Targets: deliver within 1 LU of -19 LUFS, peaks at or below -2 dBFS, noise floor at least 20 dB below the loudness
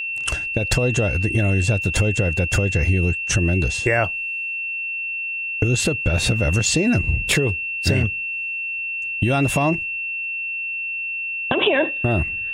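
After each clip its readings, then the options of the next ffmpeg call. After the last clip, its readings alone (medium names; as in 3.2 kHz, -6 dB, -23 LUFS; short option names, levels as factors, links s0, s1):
steady tone 2.7 kHz; tone level -24 dBFS; loudness -20.5 LUFS; peak level -5.0 dBFS; loudness target -19.0 LUFS
-> -af "bandreject=f=2700:w=30"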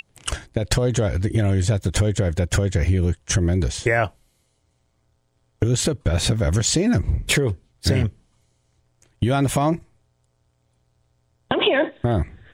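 steady tone not found; loudness -21.5 LUFS; peak level -6.0 dBFS; loudness target -19.0 LUFS
-> -af "volume=1.33"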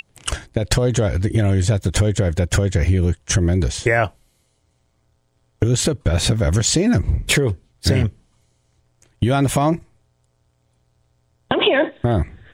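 loudness -19.0 LUFS; peak level -3.5 dBFS; noise floor -65 dBFS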